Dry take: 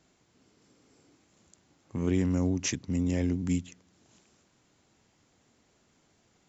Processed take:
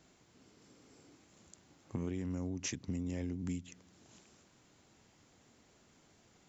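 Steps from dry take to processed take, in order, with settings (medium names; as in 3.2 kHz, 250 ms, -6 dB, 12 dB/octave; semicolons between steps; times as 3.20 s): compression 12:1, threshold -36 dBFS, peak gain reduction 15 dB; trim +1.5 dB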